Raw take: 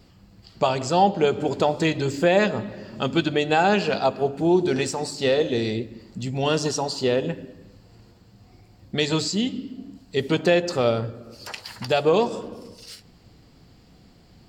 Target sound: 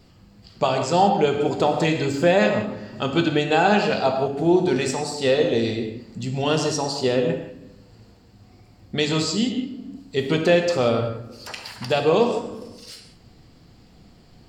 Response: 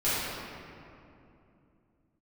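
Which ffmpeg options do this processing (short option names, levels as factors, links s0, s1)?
-filter_complex "[0:a]asplit=2[s0][s1];[1:a]atrim=start_sample=2205,atrim=end_sample=4410,asetrate=22932,aresample=44100[s2];[s1][s2]afir=irnorm=-1:irlink=0,volume=0.15[s3];[s0][s3]amix=inputs=2:normalize=0,volume=0.841"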